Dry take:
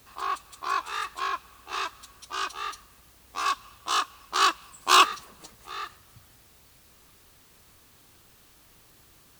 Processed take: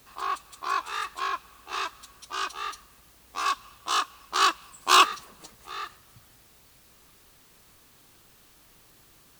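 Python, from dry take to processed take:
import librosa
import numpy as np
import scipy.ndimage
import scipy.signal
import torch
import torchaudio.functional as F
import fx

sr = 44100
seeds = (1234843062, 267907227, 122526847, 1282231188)

y = fx.peak_eq(x, sr, hz=79.0, db=-7.0, octaves=0.48)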